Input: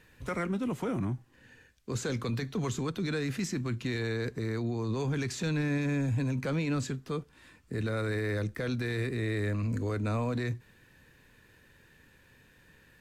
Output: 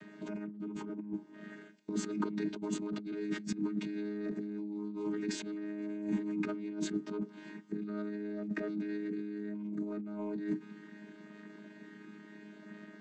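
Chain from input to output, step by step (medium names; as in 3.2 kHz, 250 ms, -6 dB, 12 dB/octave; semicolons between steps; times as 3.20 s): vocoder on a held chord bare fifth, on G#3; bass shelf 240 Hz +10 dB; compressor with a negative ratio -38 dBFS, ratio -1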